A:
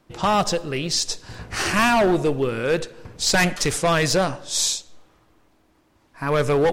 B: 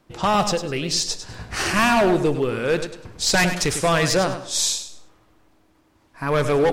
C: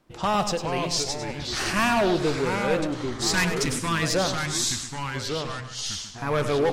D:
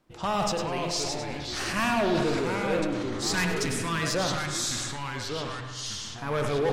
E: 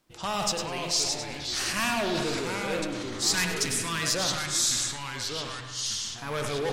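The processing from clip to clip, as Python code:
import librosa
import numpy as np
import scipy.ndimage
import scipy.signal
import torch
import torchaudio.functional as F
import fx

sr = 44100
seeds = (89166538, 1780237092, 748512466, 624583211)

y1 = fx.echo_feedback(x, sr, ms=101, feedback_pct=25, wet_db=-10)
y2 = fx.spec_box(y1, sr, start_s=3.13, length_s=0.89, low_hz=360.0, high_hz=840.0, gain_db=-15)
y2 = fx.echo_pitch(y2, sr, ms=366, semitones=-3, count=2, db_per_echo=-6.0)
y2 = y2 * 10.0 ** (-4.5 / 20.0)
y3 = fx.rev_spring(y2, sr, rt60_s=2.0, pass_ms=(55,), chirp_ms=30, drr_db=6.5)
y3 = fx.sustainer(y3, sr, db_per_s=22.0)
y3 = y3 * 10.0 ** (-4.5 / 20.0)
y4 = fx.high_shelf(y3, sr, hz=2500.0, db=11.5)
y4 = y4 * 10.0 ** (-4.5 / 20.0)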